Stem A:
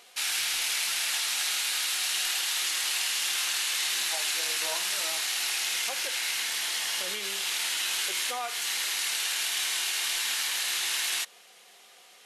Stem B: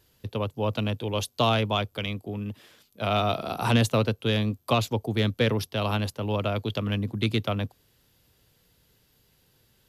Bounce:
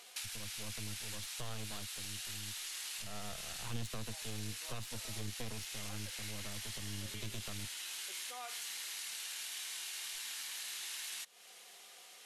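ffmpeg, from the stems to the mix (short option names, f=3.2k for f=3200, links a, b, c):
-filter_complex "[0:a]bandreject=f=60:t=h:w=6,bandreject=f=120:t=h:w=6,bandreject=f=180:t=h:w=6,bandreject=f=240:t=h:w=6,volume=-4dB[a];[1:a]agate=range=-33dB:threshold=-52dB:ratio=3:detection=peak,aeval=exprs='max(val(0),0)':c=same,volume=-12.5dB,asplit=2[b][c];[c]apad=whole_len=540294[d];[a][d]sidechaincompress=threshold=-45dB:ratio=8:attack=11:release=846[e];[e][b]amix=inputs=2:normalize=0,equalizer=f=9.8k:t=o:w=2.3:g=4.5,acrossover=split=150[f][g];[g]acompressor=threshold=-42dB:ratio=6[h];[f][h]amix=inputs=2:normalize=0"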